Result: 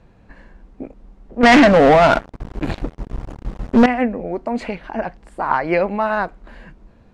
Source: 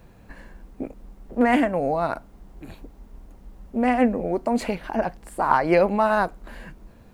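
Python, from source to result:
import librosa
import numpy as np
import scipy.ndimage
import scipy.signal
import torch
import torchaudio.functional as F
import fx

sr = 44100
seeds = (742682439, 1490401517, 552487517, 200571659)

y = fx.dynamic_eq(x, sr, hz=2100.0, q=1.2, threshold_db=-39.0, ratio=4.0, max_db=5)
y = fx.leveller(y, sr, passes=5, at=(1.43, 3.86))
y = fx.air_absorb(y, sr, metres=89.0)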